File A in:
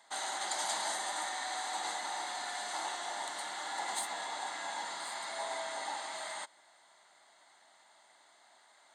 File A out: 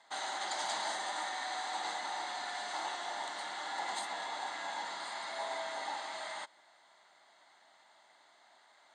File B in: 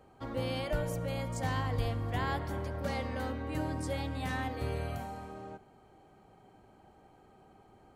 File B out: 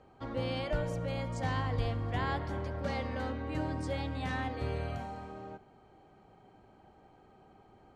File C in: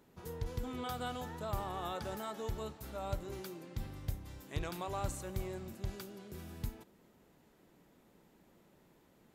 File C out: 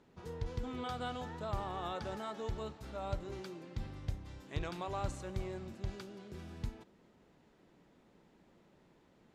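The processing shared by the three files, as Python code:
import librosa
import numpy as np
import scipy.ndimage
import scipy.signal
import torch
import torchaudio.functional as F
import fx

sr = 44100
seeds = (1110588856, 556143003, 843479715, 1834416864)

y = scipy.signal.sosfilt(scipy.signal.butter(2, 5700.0, 'lowpass', fs=sr, output='sos'), x)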